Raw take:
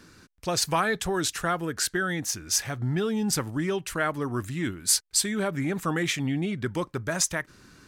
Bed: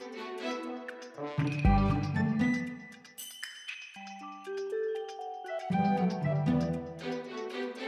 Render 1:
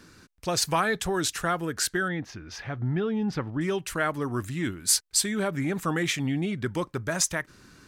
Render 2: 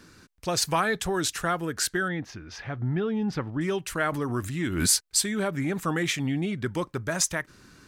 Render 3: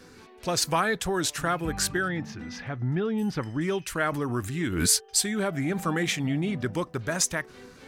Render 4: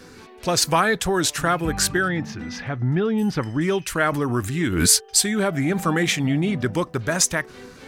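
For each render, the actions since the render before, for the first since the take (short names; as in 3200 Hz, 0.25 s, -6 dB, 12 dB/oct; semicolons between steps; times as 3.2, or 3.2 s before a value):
2.08–3.61 air absorption 300 m
2.45–3.09 high shelf 9100 Hz -9 dB; 4–4.95 backwards sustainer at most 55 dB/s
add bed -12 dB
gain +6 dB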